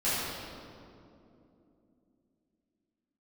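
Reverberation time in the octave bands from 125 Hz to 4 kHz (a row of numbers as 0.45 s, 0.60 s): 3.4 s, 4.3 s, 3.3 s, 2.3 s, 1.7 s, 1.5 s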